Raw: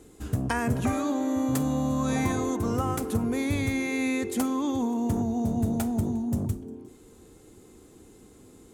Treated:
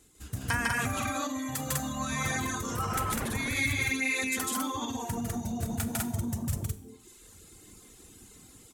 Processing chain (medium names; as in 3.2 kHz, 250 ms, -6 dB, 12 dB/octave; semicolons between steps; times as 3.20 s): 2.66–3.31 s: wind noise 490 Hz -22 dBFS; on a send: loudspeakers at several distances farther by 52 m -1 dB, 69 m 0 dB; on the sum: level rider gain up to 6.5 dB; peak limiter -11.5 dBFS, peak gain reduction 7 dB; dynamic bell 1.5 kHz, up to +6 dB, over -38 dBFS, Q 0.93; reverb removal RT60 1 s; amplifier tone stack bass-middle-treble 5-5-5; Schroeder reverb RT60 0.7 s, combs from 32 ms, DRR 13.5 dB; trim +5 dB